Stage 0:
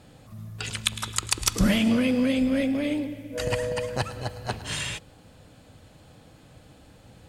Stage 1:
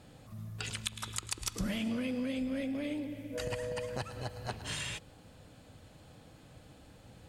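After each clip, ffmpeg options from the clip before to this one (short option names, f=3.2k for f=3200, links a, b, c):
-af "acompressor=threshold=-32dB:ratio=2.5,volume=-4dB"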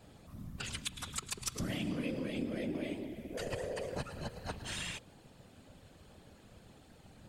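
-af "afftfilt=real='hypot(re,im)*cos(2*PI*random(0))':imag='hypot(re,im)*sin(2*PI*random(1))':win_size=512:overlap=0.75,volume=4dB"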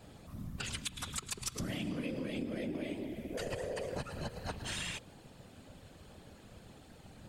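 -af "acompressor=threshold=-39dB:ratio=2.5,volume=3dB"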